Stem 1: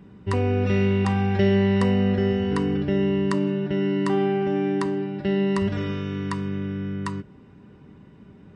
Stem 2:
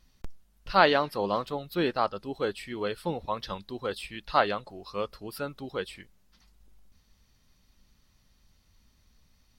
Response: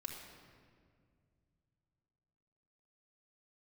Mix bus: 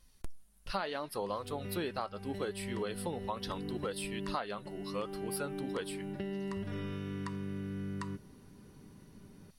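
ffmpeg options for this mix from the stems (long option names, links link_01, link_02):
-filter_complex "[0:a]acompressor=threshold=-27dB:ratio=6,adelay=950,volume=-7.5dB[link_01];[1:a]flanger=delay=1.9:depth=3.4:regen=70:speed=0.75:shape=sinusoidal,equalizer=frequency=10000:width=1.7:gain=14.5,volume=1.5dB,asplit=2[link_02][link_03];[link_03]apad=whole_len=419227[link_04];[link_01][link_04]sidechaincompress=threshold=-33dB:ratio=8:attack=16:release=716[link_05];[link_05][link_02]amix=inputs=2:normalize=0,acompressor=threshold=-32dB:ratio=16"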